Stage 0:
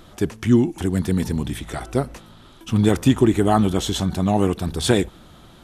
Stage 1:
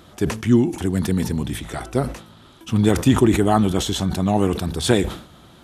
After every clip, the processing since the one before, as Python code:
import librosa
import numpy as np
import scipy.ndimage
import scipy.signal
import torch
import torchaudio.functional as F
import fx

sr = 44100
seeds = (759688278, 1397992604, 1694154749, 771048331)

y = scipy.signal.sosfilt(scipy.signal.butter(2, 55.0, 'highpass', fs=sr, output='sos'), x)
y = fx.sustainer(y, sr, db_per_s=110.0)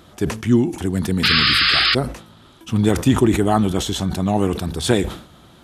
y = fx.spec_paint(x, sr, seeds[0], shape='noise', start_s=1.23, length_s=0.72, low_hz=1100.0, high_hz=5200.0, level_db=-16.0)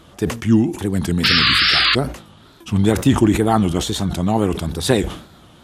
y = fx.wow_flutter(x, sr, seeds[1], rate_hz=2.1, depth_cents=130.0)
y = F.gain(torch.from_numpy(y), 1.0).numpy()